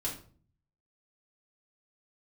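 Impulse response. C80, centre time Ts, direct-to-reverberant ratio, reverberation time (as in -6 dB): 12.5 dB, 23 ms, -5.5 dB, 0.45 s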